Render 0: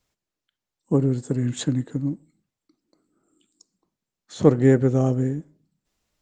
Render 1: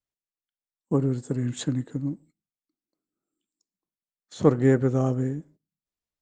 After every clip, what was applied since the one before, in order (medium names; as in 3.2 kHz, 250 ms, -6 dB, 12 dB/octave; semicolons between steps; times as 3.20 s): gate -48 dBFS, range -16 dB; dynamic bell 1.2 kHz, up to +5 dB, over -41 dBFS, Q 1.7; trim -3.5 dB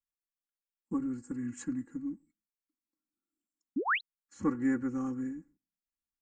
comb 3.6 ms, depth 96%; painted sound rise, 3.76–4.01 s, 230–4300 Hz -17 dBFS; static phaser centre 1.5 kHz, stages 4; trim -9 dB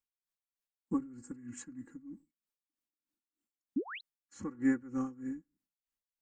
logarithmic tremolo 3.2 Hz, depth 18 dB; trim +1.5 dB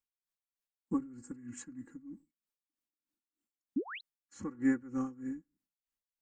no audible change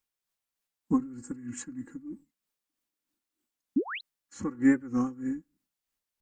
warped record 45 rpm, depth 100 cents; trim +7 dB